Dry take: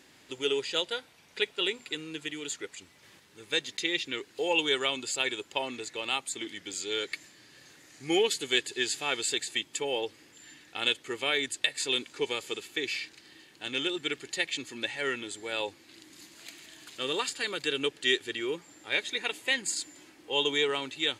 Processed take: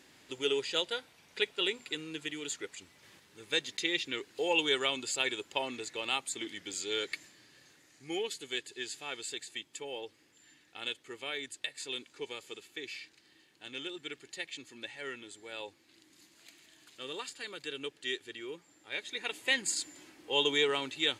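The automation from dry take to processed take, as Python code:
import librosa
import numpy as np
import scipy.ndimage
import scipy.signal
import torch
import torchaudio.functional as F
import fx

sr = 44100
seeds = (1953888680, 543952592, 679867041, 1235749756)

y = fx.gain(x, sr, db=fx.line((7.14, -2.0), (8.11, -10.0), (18.89, -10.0), (19.52, -1.0)))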